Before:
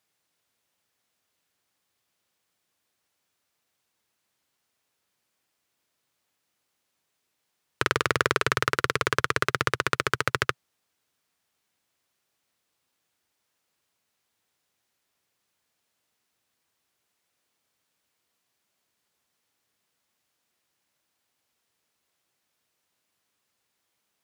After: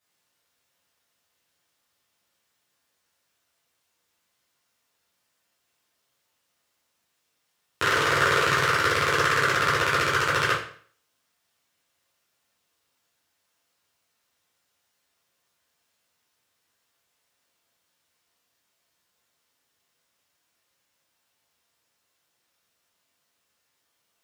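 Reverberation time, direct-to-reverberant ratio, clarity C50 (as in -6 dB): 0.50 s, -9.5 dB, 4.5 dB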